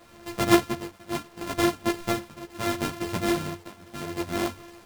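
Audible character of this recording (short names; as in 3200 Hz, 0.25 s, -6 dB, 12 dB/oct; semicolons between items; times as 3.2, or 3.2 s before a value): a buzz of ramps at a fixed pitch in blocks of 128 samples; tremolo triangle 0.73 Hz, depth 95%; a quantiser's noise floor 10-bit, dither none; a shimmering, thickened sound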